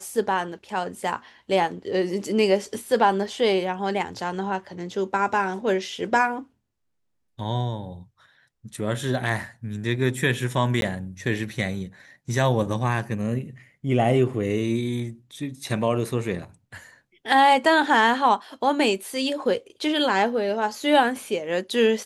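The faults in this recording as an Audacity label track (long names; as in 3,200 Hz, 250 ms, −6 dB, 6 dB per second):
10.810000	10.820000	drop-out 12 ms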